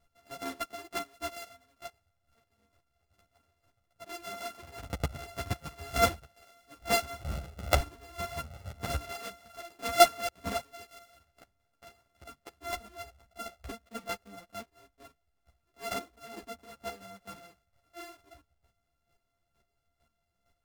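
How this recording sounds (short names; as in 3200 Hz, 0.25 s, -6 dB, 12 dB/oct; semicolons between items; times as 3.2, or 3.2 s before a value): a buzz of ramps at a fixed pitch in blocks of 64 samples; chopped level 2.2 Hz, depth 65%, duty 15%; a shimmering, thickened sound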